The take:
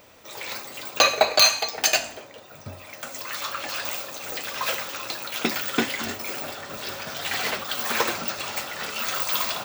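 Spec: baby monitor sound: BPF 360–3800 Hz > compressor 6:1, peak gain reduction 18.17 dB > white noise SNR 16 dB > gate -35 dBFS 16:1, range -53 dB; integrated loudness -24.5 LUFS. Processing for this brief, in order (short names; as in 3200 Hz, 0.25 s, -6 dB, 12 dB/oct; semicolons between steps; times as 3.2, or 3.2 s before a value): BPF 360–3800 Hz; compressor 6:1, threshold -33 dBFS; white noise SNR 16 dB; gate -35 dBFS 16:1, range -53 dB; gain +12.5 dB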